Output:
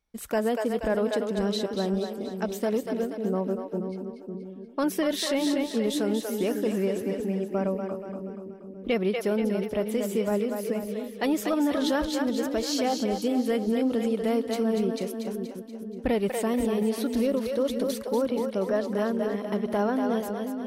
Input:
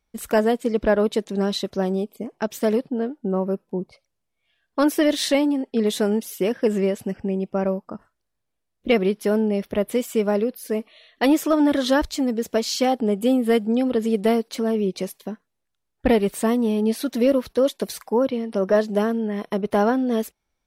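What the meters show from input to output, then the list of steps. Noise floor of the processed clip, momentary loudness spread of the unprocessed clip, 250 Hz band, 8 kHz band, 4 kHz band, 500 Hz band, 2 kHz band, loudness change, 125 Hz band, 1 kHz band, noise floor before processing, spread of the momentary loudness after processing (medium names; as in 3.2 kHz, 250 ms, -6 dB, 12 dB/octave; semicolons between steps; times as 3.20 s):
-41 dBFS, 9 LU, -5.0 dB, -4.0 dB, -4.5 dB, -5.0 dB, -5.5 dB, -5.5 dB, -4.0 dB, -5.0 dB, -78 dBFS, 8 LU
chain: two-band feedback delay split 420 Hz, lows 547 ms, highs 239 ms, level -6 dB; peak limiter -12 dBFS, peak gain reduction 5.5 dB; trim -5 dB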